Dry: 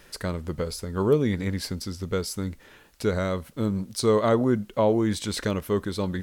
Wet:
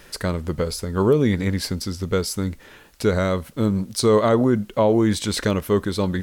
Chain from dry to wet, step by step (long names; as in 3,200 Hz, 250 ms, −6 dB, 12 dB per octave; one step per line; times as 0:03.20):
boost into a limiter +13 dB
level −7.5 dB